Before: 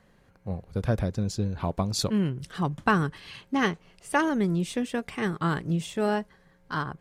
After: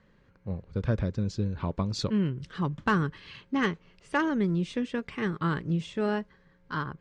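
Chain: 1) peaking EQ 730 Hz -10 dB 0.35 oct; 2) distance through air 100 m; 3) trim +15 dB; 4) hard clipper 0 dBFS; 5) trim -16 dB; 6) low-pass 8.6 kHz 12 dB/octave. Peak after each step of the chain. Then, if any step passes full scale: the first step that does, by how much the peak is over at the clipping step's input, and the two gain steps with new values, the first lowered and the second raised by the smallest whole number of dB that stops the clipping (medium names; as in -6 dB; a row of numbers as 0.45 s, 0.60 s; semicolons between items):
-9.5 dBFS, -10.0 dBFS, +5.0 dBFS, 0.0 dBFS, -16.0 dBFS, -16.0 dBFS; step 3, 5.0 dB; step 3 +10 dB, step 5 -11 dB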